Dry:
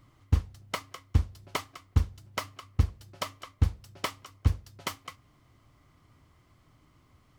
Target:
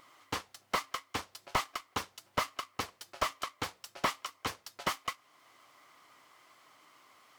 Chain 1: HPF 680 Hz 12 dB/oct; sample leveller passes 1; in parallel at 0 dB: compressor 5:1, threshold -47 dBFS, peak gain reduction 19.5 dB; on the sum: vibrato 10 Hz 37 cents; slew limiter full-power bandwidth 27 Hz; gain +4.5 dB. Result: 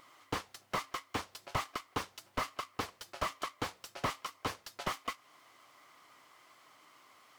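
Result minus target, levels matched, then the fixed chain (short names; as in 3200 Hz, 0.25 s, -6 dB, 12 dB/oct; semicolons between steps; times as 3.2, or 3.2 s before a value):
compressor: peak gain reduction -8 dB; slew limiter: distortion +5 dB
HPF 680 Hz 12 dB/oct; sample leveller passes 1; in parallel at 0 dB: compressor 5:1, threshold -57 dBFS, peak gain reduction 27.5 dB; on the sum: vibrato 10 Hz 37 cents; slew limiter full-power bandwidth 55.5 Hz; gain +4.5 dB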